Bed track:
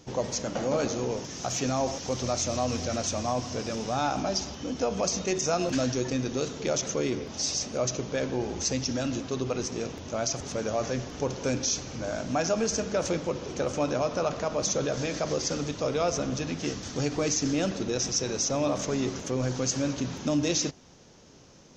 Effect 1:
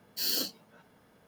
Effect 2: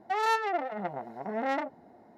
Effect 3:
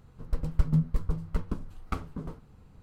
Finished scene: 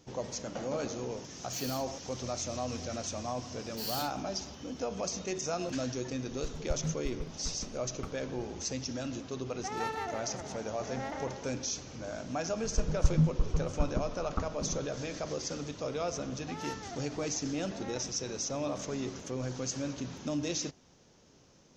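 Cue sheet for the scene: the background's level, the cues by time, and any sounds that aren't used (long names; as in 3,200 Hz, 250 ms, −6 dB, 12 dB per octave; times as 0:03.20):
bed track −7.5 dB
0:01.35: mix in 1 −12.5 dB
0:03.60: mix in 1 −7.5 dB
0:06.11: mix in 3 −11 dB
0:09.54: mix in 2 −10 dB + repeating echo 153 ms, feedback 40%, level −3.5 dB
0:12.45: mix in 3 −1 dB + inverse Chebyshev low-pass filter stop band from 2,800 Hz
0:16.38: mix in 2 −15.5 dB + high-shelf EQ 8,900 Hz +5 dB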